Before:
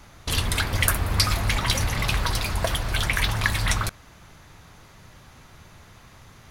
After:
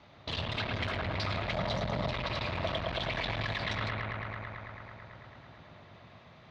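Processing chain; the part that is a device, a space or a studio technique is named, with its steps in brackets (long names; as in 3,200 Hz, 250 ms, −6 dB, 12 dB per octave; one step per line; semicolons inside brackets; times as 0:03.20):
analogue delay pedal into a guitar amplifier (bucket-brigade delay 110 ms, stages 2,048, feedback 83%, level −4.5 dB; tube saturation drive 23 dB, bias 0.55; loudspeaker in its box 91–4,200 Hz, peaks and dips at 620 Hz +7 dB, 1,500 Hz −4 dB, 3,800 Hz +4 dB)
0:01.53–0:02.12: graphic EQ with 15 bands 160 Hz +7 dB, 630 Hz +5 dB, 2,500 Hz −8 dB
level −4.5 dB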